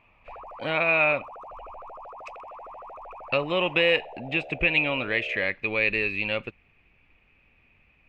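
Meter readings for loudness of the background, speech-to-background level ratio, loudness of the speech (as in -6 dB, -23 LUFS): -43.0 LUFS, 18.5 dB, -24.5 LUFS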